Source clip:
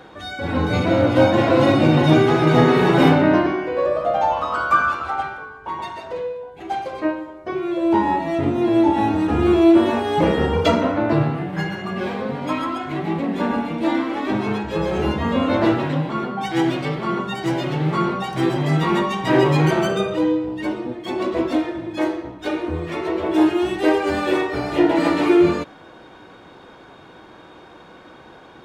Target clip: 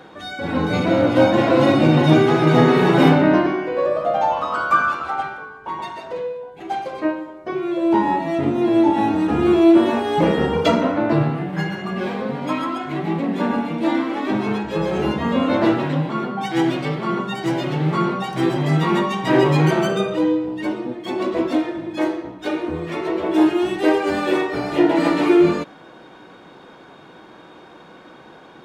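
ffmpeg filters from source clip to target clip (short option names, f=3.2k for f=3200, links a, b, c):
-af "lowshelf=f=120:t=q:w=1.5:g=-6"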